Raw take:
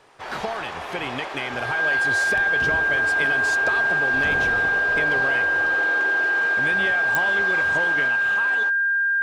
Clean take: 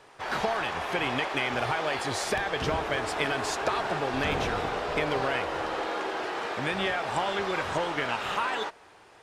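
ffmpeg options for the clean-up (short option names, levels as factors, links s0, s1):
-af "adeclick=t=4,bandreject=f=1600:w=30,asetnsamples=n=441:p=0,asendcmd='8.08 volume volume 4dB',volume=1"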